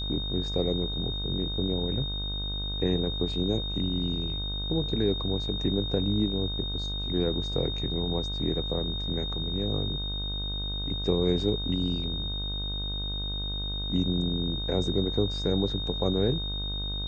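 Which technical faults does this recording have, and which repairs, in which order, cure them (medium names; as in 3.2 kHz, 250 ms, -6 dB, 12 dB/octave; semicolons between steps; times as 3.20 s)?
buzz 50 Hz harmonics 32 -34 dBFS
whine 3.7 kHz -33 dBFS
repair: de-hum 50 Hz, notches 32; band-stop 3.7 kHz, Q 30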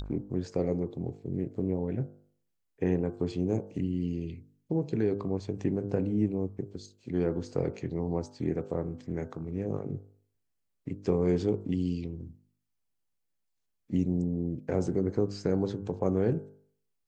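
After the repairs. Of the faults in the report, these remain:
nothing left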